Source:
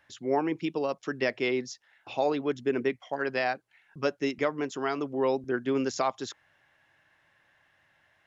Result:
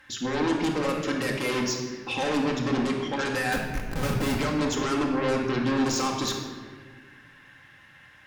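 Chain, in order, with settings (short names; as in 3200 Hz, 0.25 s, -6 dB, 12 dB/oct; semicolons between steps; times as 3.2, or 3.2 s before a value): bell 660 Hz -14 dB 0.44 oct; limiter -24.5 dBFS, peak gain reduction 9 dB; 3.52–4.36 Schmitt trigger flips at -53.5 dBFS; added harmonics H 5 -6 dB, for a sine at -24.5 dBFS; shoebox room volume 1700 m³, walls mixed, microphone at 2.1 m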